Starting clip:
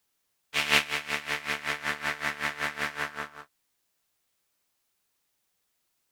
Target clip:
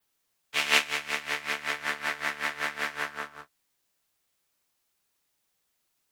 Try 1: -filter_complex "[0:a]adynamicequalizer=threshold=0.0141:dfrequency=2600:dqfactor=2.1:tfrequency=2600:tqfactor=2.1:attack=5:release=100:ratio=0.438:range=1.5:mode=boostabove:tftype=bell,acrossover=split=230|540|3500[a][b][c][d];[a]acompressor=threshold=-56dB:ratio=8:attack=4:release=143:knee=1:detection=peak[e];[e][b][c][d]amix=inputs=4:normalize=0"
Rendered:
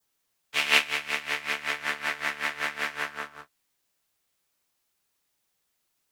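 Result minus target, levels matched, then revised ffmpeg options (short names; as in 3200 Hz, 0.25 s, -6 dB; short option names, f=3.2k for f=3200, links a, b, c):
8000 Hz band -2.5 dB
-filter_complex "[0:a]adynamicequalizer=threshold=0.0141:dfrequency=6700:dqfactor=2.1:tfrequency=6700:tqfactor=2.1:attack=5:release=100:ratio=0.438:range=1.5:mode=boostabove:tftype=bell,acrossover=split=230|540|3500[a][b][c][d];[a]acompressor=threshold=-56dB:ratio=8:attack=4:release=143:knee=1:detection=peak[e];[e][b][c][d]amix=inputs=4:normalize=0"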